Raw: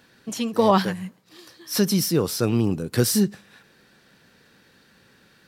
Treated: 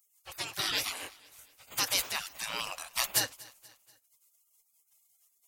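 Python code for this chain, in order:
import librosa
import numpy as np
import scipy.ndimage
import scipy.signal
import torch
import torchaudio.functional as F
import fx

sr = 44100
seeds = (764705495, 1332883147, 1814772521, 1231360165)

y = fx.spec_gate(x, sr, threshold_db=-30, keep='weak')
y = fx.echo_feedback(y, sr, ms=240, feedback_pct=49, wet_db=-22)
y = y * 10.0 ** (8.5 / 20.0)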